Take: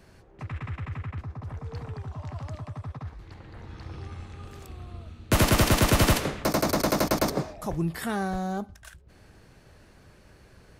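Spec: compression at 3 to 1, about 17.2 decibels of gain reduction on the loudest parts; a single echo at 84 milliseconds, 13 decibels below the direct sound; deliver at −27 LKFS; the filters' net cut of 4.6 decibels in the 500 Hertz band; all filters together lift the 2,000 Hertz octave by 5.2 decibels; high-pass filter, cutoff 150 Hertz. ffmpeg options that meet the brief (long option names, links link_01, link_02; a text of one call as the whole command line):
ffmpeg -i in.wav -af "highpass=150,equalizer=frequency=500:width_type=o:gain=-6.5,equalizer=frequency=2000:width_type=o:gain=7,acompressor=threshold=-43dB:ratio=3,aecho=1:1:84:0.224,volume=16dB" out.wav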